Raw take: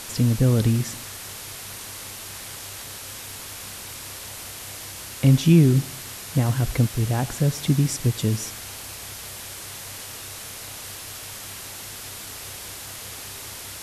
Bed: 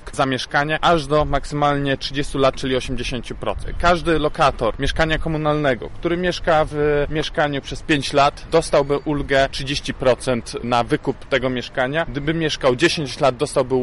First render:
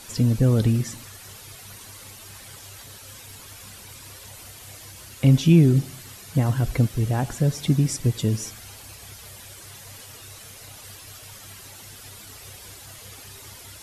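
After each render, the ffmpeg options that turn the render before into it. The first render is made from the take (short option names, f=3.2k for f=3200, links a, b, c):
-af "afftdn=nr=10:nf=-38"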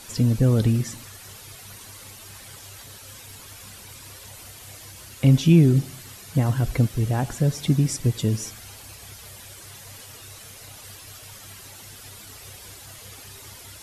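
-af anull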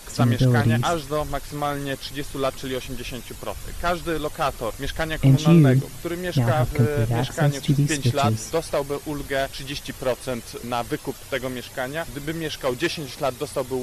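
-filter_complex "[1:a]volume=-8dB[a];[0:a][a]amix=inputs=2:normalize=0"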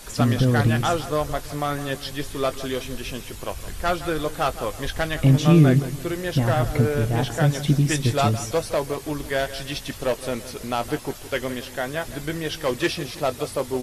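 -filter_complex "[0:a]asplit=2[a][b];[b]adelay=20,volume=-13dB[c];[a][c]amix=inputs=2:normalize=0,aecho=1:1:165|330|495|660:0.188|0.0716|0.0272|0.0103"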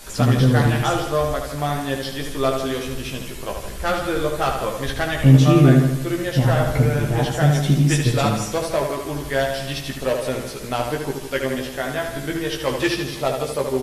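-filter_complex "[0:a]asplit=2[a][b];[b]adelay=15,volume=-4dB[c];[a][c]amix=inputs=2:normalize=0,asplit=2[d][e];[e]adelay=75,lowpass=f=4.3k:p=1,volume=-5dB,asplit=2[f][g];[g]adelay=75,lowpass=f=4.3k:p=1,volume=0.41,asplit=2[h][i];[i]adelay=75,lowpass=f=4.3k:p=1,volume=0.41,asplit=2[j][k];[k]adelay=75,lowpass=f=4.3k:p=1,volume=0.41,asplit=2[l][m];[m]adelay=75,lowpass=f=4.3k:p=1,volume=0.41[n];[d][f][h][j][l][n]amix=inputs=6:normalize=0"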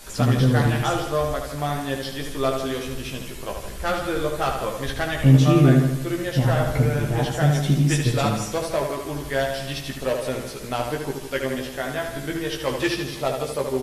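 -af "volume=-2.5dB"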